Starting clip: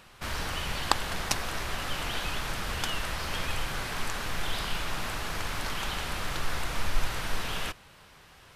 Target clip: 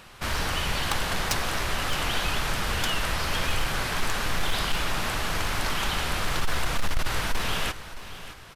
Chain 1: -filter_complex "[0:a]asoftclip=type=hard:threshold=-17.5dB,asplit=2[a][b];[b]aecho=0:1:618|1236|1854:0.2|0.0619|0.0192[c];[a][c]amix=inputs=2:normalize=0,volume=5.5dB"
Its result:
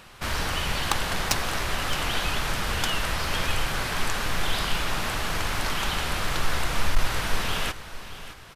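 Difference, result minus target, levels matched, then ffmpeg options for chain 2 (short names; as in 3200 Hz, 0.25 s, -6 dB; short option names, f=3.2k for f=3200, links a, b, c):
hard clip: distortion -7 dB
-filter_complex "[0:a]asoftclip=type=hard:threshold=-24dB,asplit=2[a][b];[b]aecho=0:1:618|1236|1854:0.2|0.0619|0.0192[c];[a][c]amix=inputs=2:normalize=0,volume=5.5dB"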